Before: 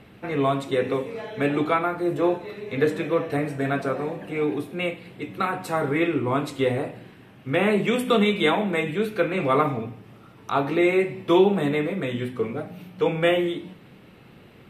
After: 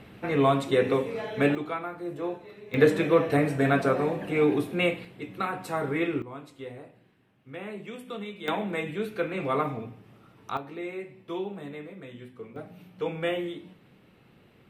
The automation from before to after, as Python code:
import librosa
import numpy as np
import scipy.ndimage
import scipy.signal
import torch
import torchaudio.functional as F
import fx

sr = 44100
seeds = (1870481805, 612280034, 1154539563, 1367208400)

y = fx.gain(x, sr, db=fx.steps((0.0, 0.5), (1.55, -10.5), (2.74, 2.0), (5.05, -5.0), (6.22, -17.5), (8.48, -6.5), (10.57, -16.0), (12.56, -8.5)))